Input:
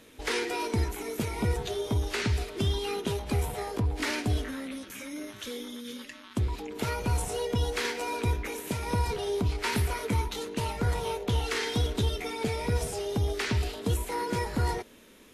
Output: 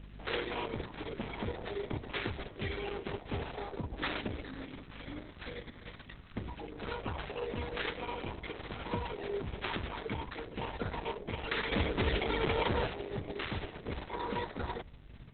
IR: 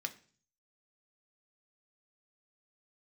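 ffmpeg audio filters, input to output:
-filter_complex "[0:a]equalizer=frequency=70:width_type=o:width=1.8:gain=-9.5,bandreject=frequency=60:width_type=h:width=6,bandreject=frequency=120:width_type=h:width=6,bandreject=frequency=180:width_type=h:width=6,bandreject=frequency=240:width_type=h:width=6,acrusher=samples=8:mix=1:aa=0.000001,aeval=exprs='val(0)+0.00794*(sin(2*PI*50*n/s)+sin(2*PI*2*50*n/s)/2+sin(2*PI*3*50*n/s)/3+sin(2*PI*4*50*n/s)/4+sin(2*PI*5*50*n/s)/5)':channel_layout=same,asplit=3[link_01][link_02][link_03];[link_01]afade=type=out:start_time=11.71:duration=0.02[link_04];[link_02]aeval=exprs='0.112*(cos(1*acos(clip(val(0)/0.112,-1,1)))-cos(1*PI/2))+0.0501*(cos(5*acos(clip(val(0)/0.112,-1,1)))-cos(5*PI/2))+0.000708*(cos(8*acos(clip(val(0)/0.112,-1,1)))-cos(8*PI/2))':channel_layout=same,afade=type=in:start_time=11.71:duration=0.02,afade=type=out:start_time=12.86:duration=0.02[link_05];[link_03]afade=type=in:start_time=12.86:duration=0.02[link_06];[link_04][link_05][link_06]amix=inputs=3:normalize=0,volume=-4dB" -ar 48000 -c:a libopus -b:a 6k

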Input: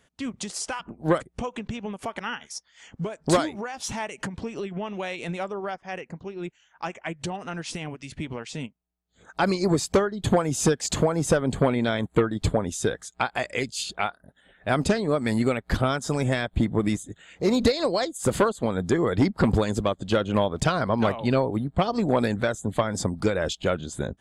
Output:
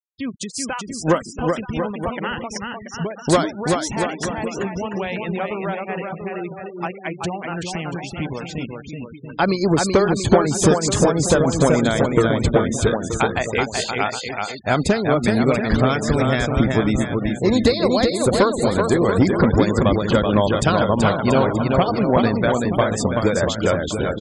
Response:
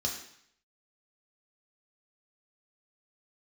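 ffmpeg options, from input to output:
-af "aecho=1:1:380|684|927.2|1122|1277:0.631|0.398|0.251|0.158|0.1,afftfilt=real='re*gte(hypot(re,im),0.0178)':imag='im*gte(hypot(re,im),0.0178)':win_size=1024:overlap=0.75,volume=4.5dB"

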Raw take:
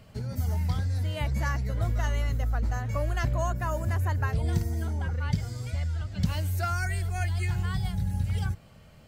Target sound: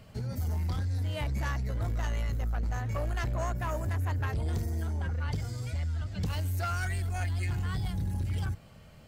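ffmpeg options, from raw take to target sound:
ffmpeg -i in.wav -af "asoftclip=type=tanh:threshold=-26dB" out.wav

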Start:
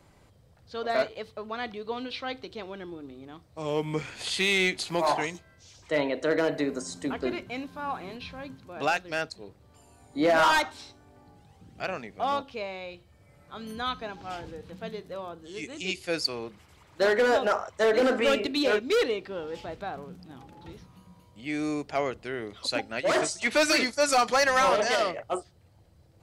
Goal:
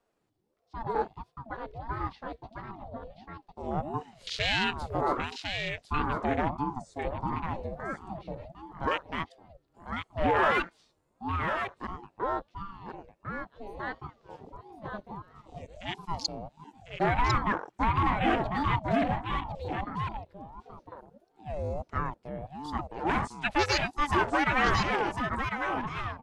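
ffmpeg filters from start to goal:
ffmpeg -i in.wav -af "afwtdn=0.0316,aecho=1:1:1051:0.501,aeval=exprs='val(0)*sin(2*PI*400*n/s+400*0.5/1.5*sin(2*PI*1.5*n/s))':channel_layout=same" out.wav

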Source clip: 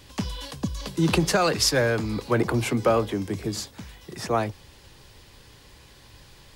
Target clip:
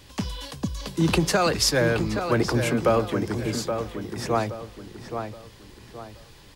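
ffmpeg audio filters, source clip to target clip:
ffmpeg -i in.wav -filter_complex "[0:a]asplit=2[link_01][link_02];[link_02]adelay=823,lowpass=frequency=2600:poles=1,volume=-7dB,asplit=2[link_03][link_04];[link_04]adelay=823,lowpass=frequency=2600:poles=1,volume=0.37,asplit=2[link_05][link_06];[link_06]adelay=823,lowpass=frequency=2600:poles=1,volume=0.37,asplit=2[link_07][link_08];[link_08]adelay=823,lowpass=frequency=2600:poles=1,volume=0.37[link_09];[link_01][link_03][link_05][link_07][link_09]amix=inputs=5:normalize=0" out.wav

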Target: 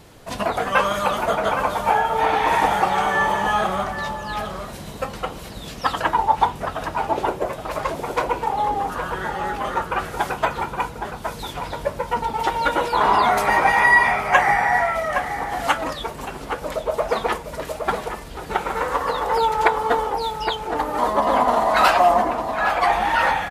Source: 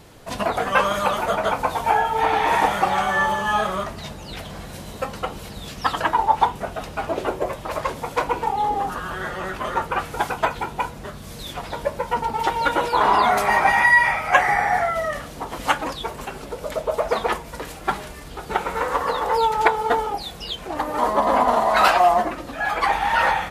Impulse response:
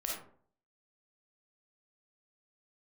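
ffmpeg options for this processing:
-filter_complex "[0:a]asplit=2[link_01][link_02];[link_02]adelay=816.3,volume=-6dB,highshelf=frequency=4000:gain=-18.4[link_03];[link_01][link_03]amix=inputs=2:normalize=0"

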